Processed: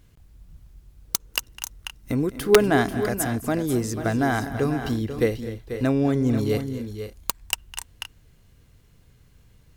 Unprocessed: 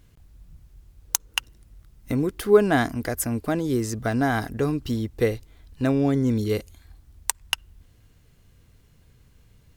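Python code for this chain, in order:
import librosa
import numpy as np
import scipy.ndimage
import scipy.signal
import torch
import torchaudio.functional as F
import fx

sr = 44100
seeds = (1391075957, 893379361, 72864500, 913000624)

y = fx.echo_multitap(x, sr, ms=(207, 243, 490, 520), db=(-19.0, -15.0, -10.0, -17.5))
y = (np.mod(10.0 ** (5.0 / 20.0) * y + 1.0, 2.0) - 1.0) / 10.0 ** (5.0 / 20.0)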